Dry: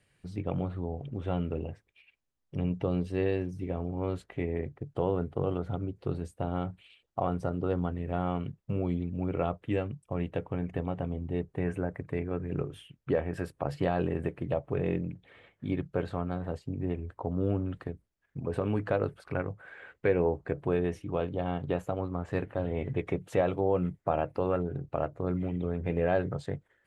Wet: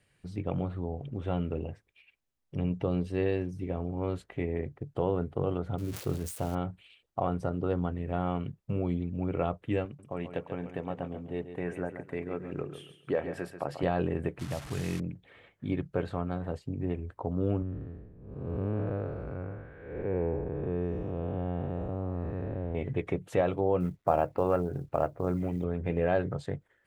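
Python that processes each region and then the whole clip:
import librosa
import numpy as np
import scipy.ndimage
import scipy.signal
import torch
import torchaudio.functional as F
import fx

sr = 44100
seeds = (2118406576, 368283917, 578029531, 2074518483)

y = fx.chain(x, sr, fx.crossing_spikes(level_db=-30.5),
    fx.high_shelf(hz=4600.0, db=-8.0),
    fx.sustainer(db_per_s=89.0), at=(5.78, 6.55))
y = fx.chain(y, sr, fx.highpass(hz=280.0, slope=6),
    fx.echo_feedback(ms=138, feedback_pct=28, wet_db=-10.0), at=(9.85, 13.83))
y = fx.chain(y, sr, fx.delta_mod(bps=64000, step_db=-36.0),
    fx.peak_eq(hz=490.0, db=-10.5, octaves=1.1), at=(14.39, 15.0))
y = fx.chain(y, sr, fx.spec_blur(span_ms=335.0),
    fx.lowpass(hz=1200.0, slope=6),
    fx.low_shelf(hz=66.0, db=11.5), at=(17.62, 22.75))
y = fx.chain(y, sr, fx.lowpass(hz=2800.0, slope=12),
    fx.dynamic_eq(hz=790.0, q=0.96, threshold_db=-41.0, ratio=4.0, max_db=4),
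    fx.quant_companded(bits=8), at=(23.8, 25.64))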